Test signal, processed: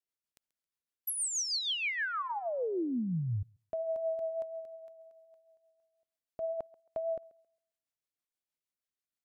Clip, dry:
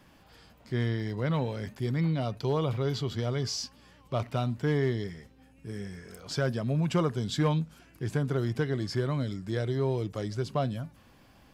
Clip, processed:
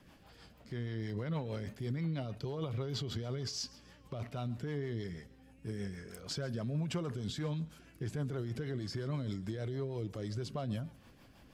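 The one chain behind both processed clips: limiter -28 dBFS; rotary speaker horn 6.3 Hz; thinning echo 0.135 s, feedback 28%, high-pass 280 Hz, level -20.5 dB

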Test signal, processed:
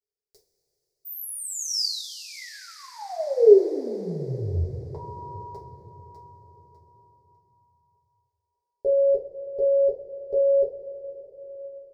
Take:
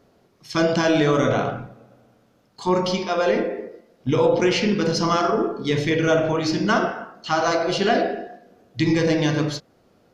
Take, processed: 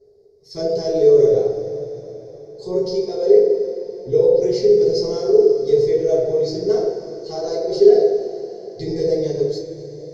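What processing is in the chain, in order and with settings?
EQ curve 140 Hz 0 dB, 260 Hz -16 dB, 410 Hz +12 dB, 1300 Hz -28 dB, 2000 Hz -17 dB, 2900 Hz -28 dB, 4800 Hz 0 dB, 6900 Hz -7 dB, 11000 Hz -11 dB; two-slope reverb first 0.25 s, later 4.9 s, from -20 dB, DRR -6.5 dB; gain -7.5 dB

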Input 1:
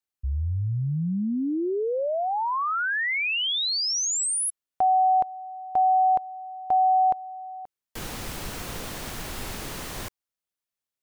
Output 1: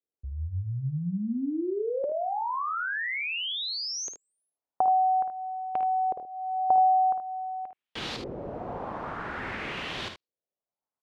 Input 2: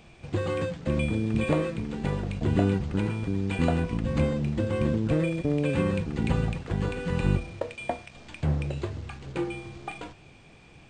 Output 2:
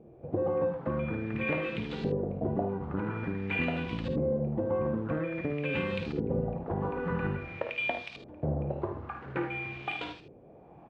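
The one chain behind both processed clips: HPF 160 Hz 6 dB/oct; compressor 5:1, threshold -29 dBFS; LFO low-pass saw up 0.49 Hz 420–4300 Hz; early reflections 53 ms -9 dB, 76 ms -10 dB

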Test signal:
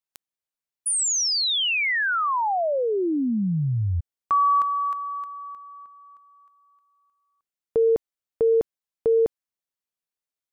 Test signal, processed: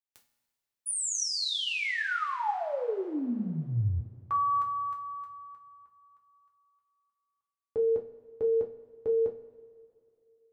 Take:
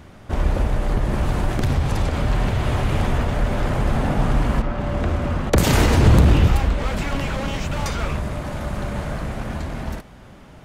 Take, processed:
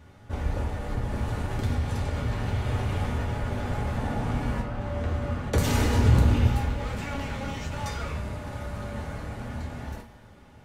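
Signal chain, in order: resonator 120 Hz, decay 1.1 s, harmonics all, mix 60%; two-slope reverb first 0.26 s, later 2.6 s, from -22 dB, DRR -1 dB; gain -4.5 dB

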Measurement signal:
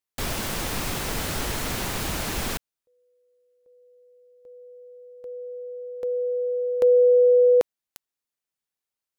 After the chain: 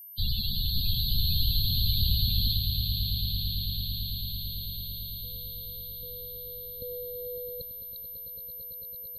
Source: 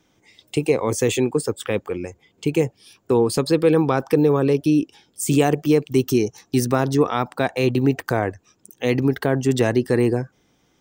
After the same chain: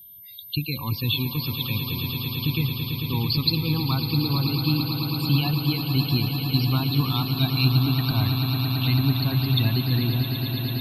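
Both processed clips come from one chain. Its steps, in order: EQ curve 100 Hz 0 dB, 280 Hz -13 dB, 450 Hz -30 dB, 1000 Hz -10 dB, 1600 Hz -16 dB, 4300 Hz +8 dB, 6300 Hz -20 dB, 12000 Hz -23 dB; loudest bins only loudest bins 32; whine 13000 Hz -48 dBFS; swelling echo 0.111 s, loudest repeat 8, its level -11 dB; gain +4.5 dB

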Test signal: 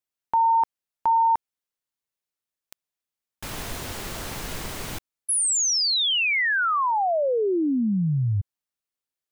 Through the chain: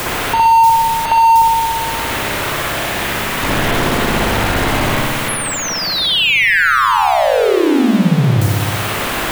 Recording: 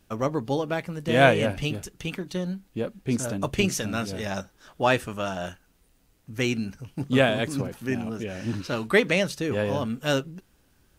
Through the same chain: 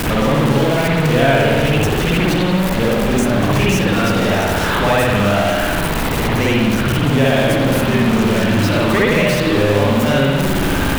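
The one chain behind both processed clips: zero-crossing step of -16.5 dBFS; spring tank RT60 1.3 s, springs 59 ms, chirp 30 ms, DRR -7.5 dB; three-band squash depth 70%; gain -4 dB

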